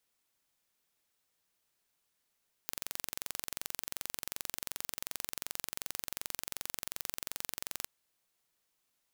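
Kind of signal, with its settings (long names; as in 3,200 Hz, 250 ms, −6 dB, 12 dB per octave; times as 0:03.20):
impulse train 22.7 per second, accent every 0, −9.5 dBFS 5.19 s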